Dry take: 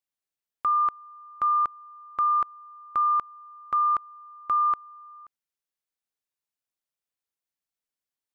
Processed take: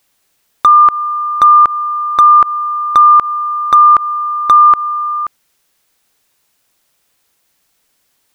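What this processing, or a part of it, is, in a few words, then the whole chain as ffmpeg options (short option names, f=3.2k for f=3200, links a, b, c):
loud club master: -af "acompressor=threshold=-25dB:ratio=3,asoftclip=type=hard:threshold=-22dB,alimiter=level_in=30.5dB:limit=-1dB:release=50:level=0:latency=1,volume=-1dB"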